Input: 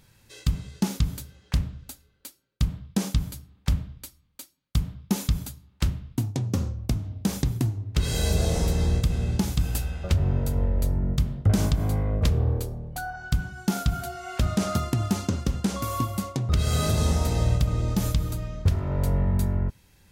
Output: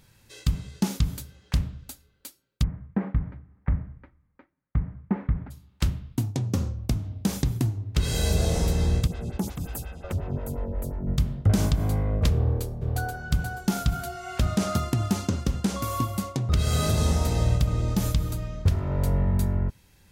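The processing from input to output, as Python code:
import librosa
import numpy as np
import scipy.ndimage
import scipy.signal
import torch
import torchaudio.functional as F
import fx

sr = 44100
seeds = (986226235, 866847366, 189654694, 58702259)

y = fx.cheby1_lowpass(x, sr, hz=2000.0, order=4, at=(2.62, 5.5), fade=0.02)
y = fx.stagger_phaser(y, sr, hz=5.6, at=(9.06, 11.06), fade=0.02)
y = fx.echo_throw(y, sr, start_s=12.33, length_s=0.79, ms=480, feedback_pct=35, wet_db=-5.5)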